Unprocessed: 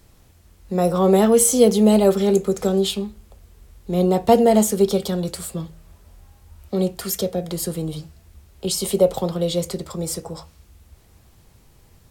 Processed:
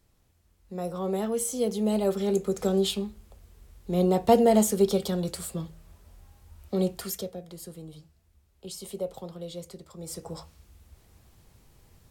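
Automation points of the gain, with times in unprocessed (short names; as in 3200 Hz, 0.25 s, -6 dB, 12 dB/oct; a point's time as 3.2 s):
1.54 s -14 dB
2.76 s -5 dB
6.95 s -5 dB
7.45 s -16.5 dB
9.93 s -16.5 dB
10.33 s -5 dB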